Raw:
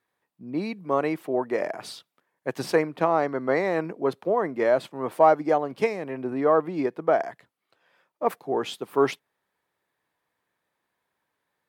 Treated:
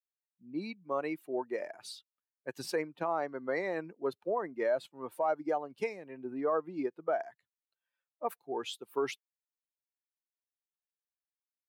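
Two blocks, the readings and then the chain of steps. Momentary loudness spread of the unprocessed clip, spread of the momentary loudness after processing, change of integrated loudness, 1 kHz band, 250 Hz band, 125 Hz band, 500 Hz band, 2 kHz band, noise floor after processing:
11 LU, 11 LU, -10.5 dB, -11.0 dB, -10.5 dB, -15.0 dB, -10.5 dB, -9.0 dB, under -85 dBFS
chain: per-bin expansion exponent 1.5; limiter -17 dBFS, peak gain reduction 10 dB; tone controls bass -7 dB, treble +2 dB; gain -4.5 dB

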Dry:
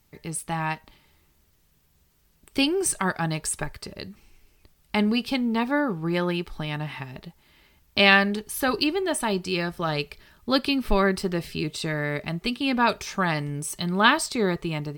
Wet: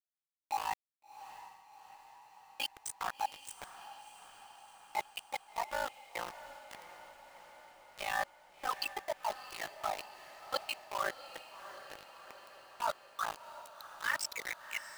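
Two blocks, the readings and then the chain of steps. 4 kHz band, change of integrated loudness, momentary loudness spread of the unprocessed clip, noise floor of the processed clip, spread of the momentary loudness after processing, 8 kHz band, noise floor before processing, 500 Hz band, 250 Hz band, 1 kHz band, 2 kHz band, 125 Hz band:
-15.5 dB, -15.0 dB, 14 LU, under -85 dBFS, 19 LU, -14.5 dB, -64 dBFS, -17.5 dB, -36.0 dB, -10.0 dB, -15.0 dB, -35.0 dB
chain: per-bin expansion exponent 2; HPF 630 Hz 24 dB/oct; band-pass sweep 900 Hz -> 2600 Hz, 12.68–14.77; high shelf 2400 Hz +5.5 dB; reverse; compressor 16:1, threshold -43 dBFS, peak gain reduction 25.5 dB; reverse; ring modulator 27 Hz; spectral delete 11.5–13.95, 1700–3500 Hz; sample gate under -50 dBFS; on a send: diffused feedback echo 0.697 s, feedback 64%, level -13 dB; on the sum: gain +14 dB

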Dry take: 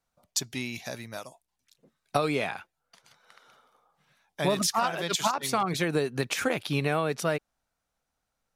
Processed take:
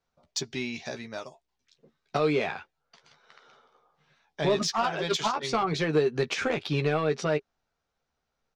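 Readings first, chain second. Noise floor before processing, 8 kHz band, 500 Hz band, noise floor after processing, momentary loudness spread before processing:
-83 dBFS, -5.5 dB, +2.5 dB, -82 dBFS, 11 LU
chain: LPF 6000 Hz 24 dB/oct; soft clip -17.5 dBFS, distortion -17 dB; doubler 13 ms -7 dB; small resonant body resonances 410 Hz, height 8 dB

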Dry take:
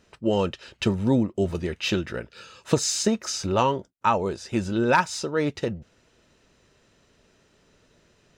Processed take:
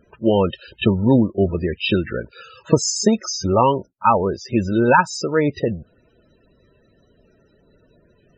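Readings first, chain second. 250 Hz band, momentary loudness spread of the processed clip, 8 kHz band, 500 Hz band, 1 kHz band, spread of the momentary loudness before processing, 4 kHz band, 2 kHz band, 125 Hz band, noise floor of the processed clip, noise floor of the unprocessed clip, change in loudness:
+6.5 dB, 9 LU, +3.5 dB, +6.5 dB, +6.5 dB, 10 LU, +3.0 dB, +5.0 dB, +6.5 dB, -59 dBFS, -63 dBFS, +6.0 dB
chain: reverse echo 32 ms -21 dB; loudest bins only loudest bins 32; gain +6.5 dB

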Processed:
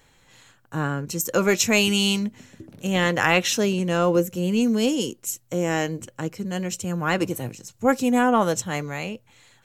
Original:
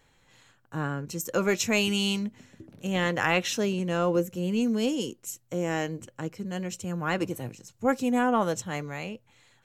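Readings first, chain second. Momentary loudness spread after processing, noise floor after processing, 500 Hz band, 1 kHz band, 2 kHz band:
13 LU, -60 dBFS, +5.0 dB, +5.0 dB, +5.5 dB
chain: high shelf 5200 Hz +4.5 dB; gain +5 dB

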